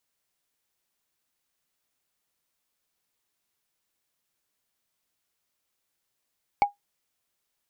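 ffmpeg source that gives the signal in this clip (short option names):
-f lavfi -i "aevalsrc='0.251*pow(10,-3*t/0.14)*sin(2*PI*814*t)+0.0794*pow(10,-3*t/0.041)*sin(2*PI*2244.2*t)+0.0251*pow(10,-3*t/0.018)*sin(2*PI*4398.9*t)+0.00794*pow(10,-3*t/0.01)*sin(2*PI*7271.5*t)+0.00251*pow(10,-3*t/0.006)*sin(2*PI*10858.8*t)':d=0.45:s=44100"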